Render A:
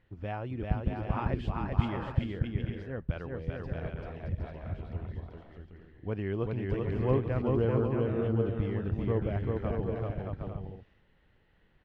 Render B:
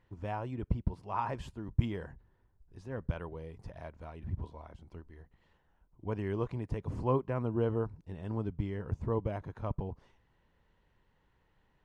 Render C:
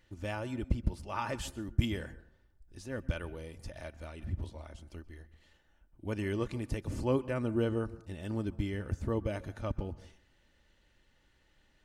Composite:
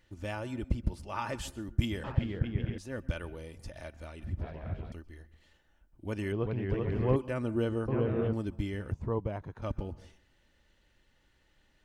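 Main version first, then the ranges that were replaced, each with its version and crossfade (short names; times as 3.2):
C
2.04–2.78 from A
4.41–4.92 from A
6.32–7.16 from A
7.88–8.33 from A
8.92–9.62 from B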